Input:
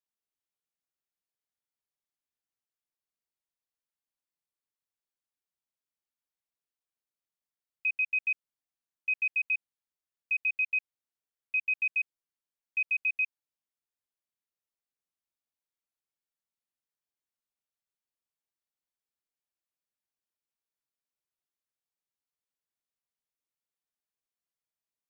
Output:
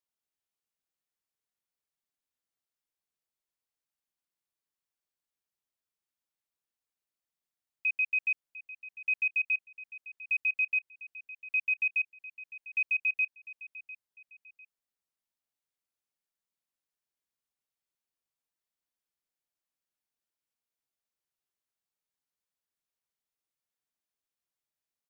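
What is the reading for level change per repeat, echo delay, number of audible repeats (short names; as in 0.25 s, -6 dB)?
-9.0 dB, 0.7 s, 2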